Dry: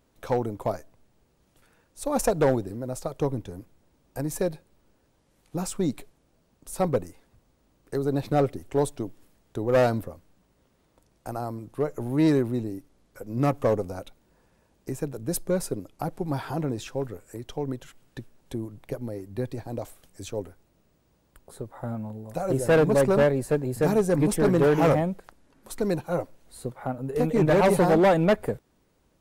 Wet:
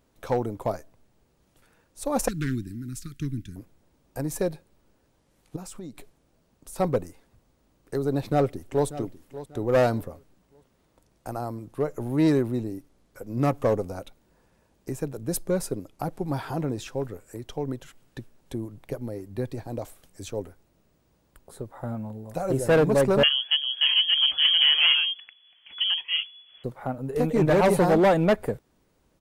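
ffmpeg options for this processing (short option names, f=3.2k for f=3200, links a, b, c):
-filter_complex "[0:a]asettb=1/sr,asplit=3[a][b][c];[a]atrim=end=2.284[d];[b]atrim=start=2.28:end=3.56,asetpts=PTS-STARTPTS,afade=t=in:d=0.004:c=qsin,afade=t=out:st=1.276:d=0.004:c=qsin,asuperstop=centerf=680:order=8:qfactor=0.56[e];[c]atrim=start=3.556[f];[d][e]acrossfade=d=0.004:c1=hsin:c2=qsin[g];[g][f]acrossfade=d=0.004:c1=qsin:c2=hsin,asettb=1/sr,asplit=3[h][i][j];[h]atrim=end=5.564[k];[i]atrim=start=5.56:end=6.76,asetpts=PTS-STARTPTS,afade=t=in:d=0.004:c=qsin,afade=t=out:st=1.196:d=0.004:c=qsin,acompressor=threshold=-38dB:ratio=4:attack=3.2:release=140:knee=1:detection=peak[l];[j]atrim=start=6.756[m];[k][l]acrossfade=d=0.004:c1=hsin:c2=qsin[n];[n][m]acrossfade=d=0.004:c1=qsin:c2=hsin,asplit=2[o][p];[p]afade=t=in:st=8.13:d=0.01,afade=t=out:st=8.86:d=0.01,aecho=0:1:590|1180|1770:0.188365|0.0565095|0.0169528[q];[o][q]amix=inputs=2:normalize=0,asettb=1/sr,asplit=3[r][s][t];[r]atrim=end=23.234[u];[s]atrim=start=23.23:end=26.64,asetpts=PTS-STARTPTS,afade=t=in:d=0.004:c=qsin,afade=t=out:st=3.406:d=0.004:c=qsin,lowpass=f=2.9k:t=q:w=0.5098,lowpass=f=2.9k:t=q:w=0.6013,lowpass=f=2.9k:t=q:w=0.9,lowpass=f=2.9k:t=q:w=2.563,afreqshift=-3400[v];[t]atrim=start=26.636[w];[u][v]acrossfade=d=0.004:c1=hsin:c2=qsin[x];[x][w]acrossfade=d=0.004:c1=qsin:c2=hsin"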